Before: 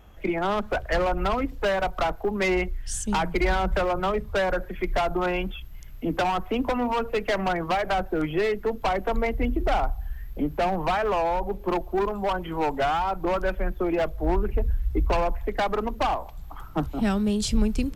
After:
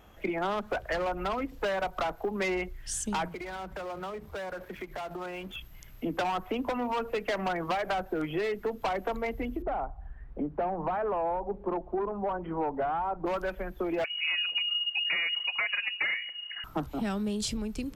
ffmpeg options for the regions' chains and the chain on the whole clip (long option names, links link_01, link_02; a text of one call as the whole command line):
ffmpeg -i in.wav -filter_complex "[0:a]asettb=1/sr,asplit=3[link_01][link_02][link_03];[link_01]atrim=end=3.284[link_04];[link_02]atrim=start=3.28:end=5.56,asetpts=PTS-STARTPTS,afade=type=in:duration=0.004:curve=qsin,afade=type=out:start_time=2.276:duration=0.004:curve=qsin,highpass=48,acompressor=threshold=-32dB:ratio=16:attack=3.2:release=140:knee=1:detection=peak,aeval=exprs='sgn(val(0))*max(abs(val(0))-0.00251,0)':channel_layout=same[link_05];[link_03]atrim=start=5.556[link_06];[link_04][link_05]acrossfade=duration=0.004:curve1=hsin:curve2=qsin[link_07];[link_07][link_06]acrossfade=duration=0.004:curve1=qsin:curve2=hsin,asettb=1/sr,asplit=3[link_08][link_09][link_10];[link_08]atrim=end=9.624[link_11];[link_09]atrim=start=9.62:end=13.26,asetpts=PTS-STARTPTS,afade=type=in:duration=0.004:curve=qsin,afade=type=out:start_time=3.636:duration=0.004:curve=qsin,lowpass=1200,bandreject=frequency=63.14:width_type=h:width=4,bandreject=frequency=126.28:width_type=h:width=4,bandreject=frequency=189.42:width_type=h:width=4[link_12];[link_10]atrim=start=13.256[link_13];[link_11][link_12]acrossfade=duration=0.004:curve1=hsin:curve2=qsin[link_14];[link_14][link_13]acrossfade=duration=0.004:curve1=qsin:curve2=hsin,asettb=1/sr,asplit=3[link_15][link_16][link_17];[link_15]atrim=end=14.044[link_18];[link_16]atrim=start=14.04:end=16.64,asetpts=PTS-STARTPTS,afade=type=in:duration=0.004:curve=qsin,afade=type=out:start_time=2.596:duration=0.004:curve=qsin,equalizer=frequency=96:width_type=o:width=1.8:gain=-14,lowpass=frequency=2500:width_type=q:width=0.5098,lowpass=frequency=2500:width_type=q:width=0.6013,lowpass=frequency=2500:width_type=q:width=0.9,lowpass=frequency=2500:width_type=q:width=2.563,afreqshift=-2900[link_19];[link_17]atrim=start=16.636[link_20];[link_18][link_19]acrossfade=duration=0.004:curve1=hsin:curve2=qsin[link_21];[link_21][link_20]acrossfade=duration=0.004:curve1=qsin:curve2=hsin,acompressor=threshold=-28dB:ratio=3,lowshelf=frequency=100:gain=-11" out.wav